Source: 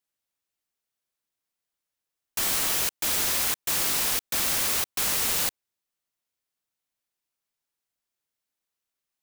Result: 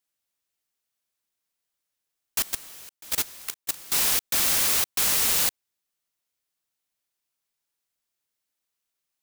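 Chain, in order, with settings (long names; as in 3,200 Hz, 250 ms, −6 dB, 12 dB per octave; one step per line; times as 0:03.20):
high-shelf EQ 2,200 Hz +3.5 dB
0:02.42–0:03.92: output level in coarse steps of 22 dB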